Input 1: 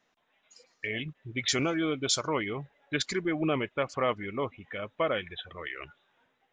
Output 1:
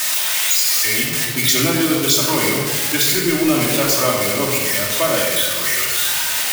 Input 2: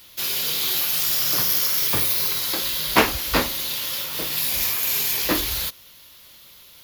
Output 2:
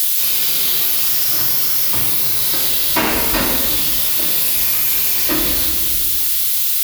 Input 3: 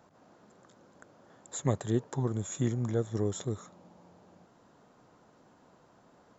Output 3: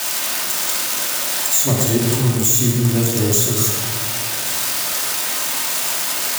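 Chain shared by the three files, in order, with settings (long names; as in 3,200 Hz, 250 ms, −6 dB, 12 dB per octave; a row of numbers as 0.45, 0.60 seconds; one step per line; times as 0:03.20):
spike at every zero crossing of −16.5 dBFS
rectangular room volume 1,300 cubic metres, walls mixed, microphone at 2.7 metres
downward compressor, threshold −16 dBFS
normalise the peak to −3 dBFS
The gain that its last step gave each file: +5.5, +3.0, +6.0 decibels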